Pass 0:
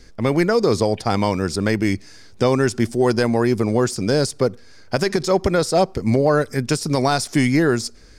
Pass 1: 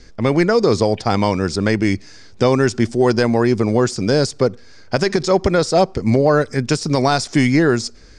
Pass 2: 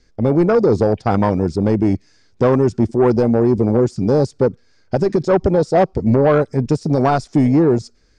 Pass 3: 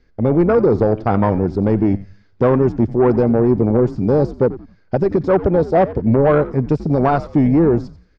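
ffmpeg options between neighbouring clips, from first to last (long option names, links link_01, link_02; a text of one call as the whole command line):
ffmpeg -i in.wav -af "lowpass=frequency=7700:width=0.5412,lowpass=frequency=7700:width=1.3066,volume=2.5dB" out.wav
ffmpeg -i in.wav -af "afwtdn=0.158,acontrast=90,volume=-4dB" out.wav
ffmpeg -i in.wav -filter_complex "[0:a]lowpass=2700,asplit=4[link_01][link_02][link_03][link_04];[link_02]adelay=89,afreqshift=-100,volume=-15.5dB[link_05];[link_03]adelay=178,afreqshift=-200,volume=-25.1dB[link_06];[link_04]adelay=267,afreqshift=-300,volume=-34.8dB[link_07];[link_01][link_05][link_06][link_07]amix=inputs=4:normalize=0" out.wav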